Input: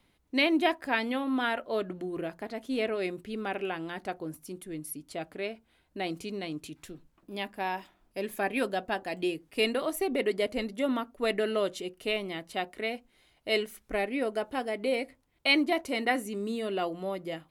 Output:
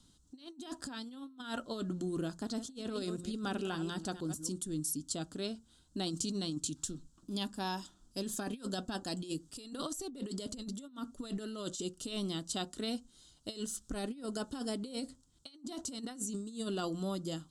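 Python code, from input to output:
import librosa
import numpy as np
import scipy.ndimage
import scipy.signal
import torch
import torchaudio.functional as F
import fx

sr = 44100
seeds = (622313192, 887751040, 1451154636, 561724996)

y = fx.reverse_delay(x, sr, ms=148, wet_db=-11.0, at=(2.43, 4.52))
y = fx.curve_eq(y, sr, hz=(270.0, 390.0, 660.0, 1400.0, 2200.0, 3200.0, 7700.0, 14000.0), db=(0, -9, -14, -5, -25, -2, 13, -14))
y = fx.over_compress(y, sr, threshold_db=-39.0, ratio=-0.5)
y = y * 10.0 ** (1.0 / 20.0)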